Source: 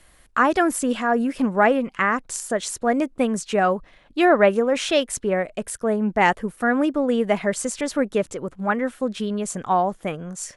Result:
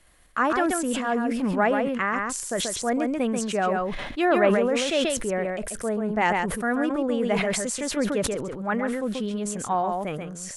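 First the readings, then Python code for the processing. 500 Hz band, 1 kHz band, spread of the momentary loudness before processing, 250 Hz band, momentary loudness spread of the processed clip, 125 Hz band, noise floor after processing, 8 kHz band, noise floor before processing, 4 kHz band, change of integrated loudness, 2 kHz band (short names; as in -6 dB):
-3.5 dB, -4.0 dB, 8 LU, -2.5 dB, 7 LU, -1.0 dB, -38 dBFS, -0.5 dB, -54 dBFS, -0.5 dB, -3.0 dB, -3.5 dB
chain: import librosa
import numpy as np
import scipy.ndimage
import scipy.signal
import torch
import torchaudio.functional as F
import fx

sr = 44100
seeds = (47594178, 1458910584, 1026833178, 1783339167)

p1 = x + fx.echo_single(x, sr, ms=135, db=-6.0, dry=0)
p2 = fx.sustainer(p1, sr, db_per_s=31.0)
y = p2 * 10.0 ** (-5.5 / 20.0)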